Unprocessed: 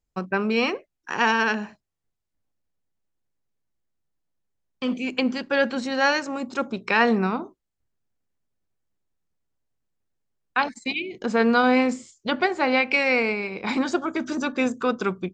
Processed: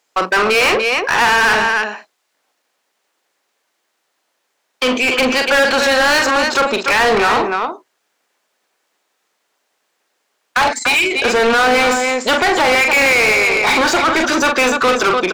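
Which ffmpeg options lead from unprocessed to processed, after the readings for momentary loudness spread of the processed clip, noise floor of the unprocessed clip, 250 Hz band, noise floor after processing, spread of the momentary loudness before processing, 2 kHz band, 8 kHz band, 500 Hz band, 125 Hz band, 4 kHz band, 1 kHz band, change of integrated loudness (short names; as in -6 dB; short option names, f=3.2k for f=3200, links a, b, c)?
5 LU, -81 dBFS, +2.5 dB, -69 dBFS, 10 LU, +12.0 dB, +20.0 dB, +9.5 dB, +3.0 dB, +14.5 dB, +11.0 dB, +10.5 dB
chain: -filter_complex "[0:a]highpass=400,alimiter=limit=-14.5dB:level=0:latency=1:release=24,asplit=2[a][b];[b]aecho=0:1:43.73|291.5:0.316|0.282[c];[a][c]amix=inputs=2:normalize=0,asplit=2[d][e];[e]highpass=f=720:p=1,volume=28dB,asoftclip=type=tanh:threshold=-10.5dB[f];[d][f]amix=inputs=2:normalize=0,lowpass=f=4.7k:p=1,volume=-6dB,volume=4.5dB"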